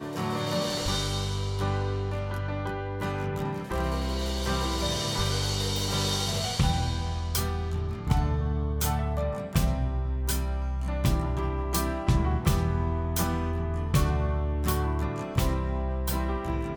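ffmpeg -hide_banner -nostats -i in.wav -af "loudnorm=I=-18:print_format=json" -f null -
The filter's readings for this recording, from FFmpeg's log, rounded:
"input_i" : "-28.7",
"input_tp" : "-8.5",
"input_lra" : "2.5",
"input_thresh" : "-38.7",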